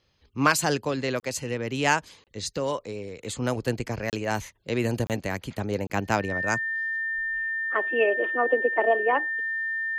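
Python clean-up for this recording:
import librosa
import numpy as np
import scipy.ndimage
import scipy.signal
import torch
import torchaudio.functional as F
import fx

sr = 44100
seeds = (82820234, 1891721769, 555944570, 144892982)

y = fx.notch(x, sr, hz=1800.0, q=30.0)
y = fx.fix_interpolate(y, sr, at_s=(1.2, 2.24, 4.1, 5.07, 5.87), length_ms=28.0)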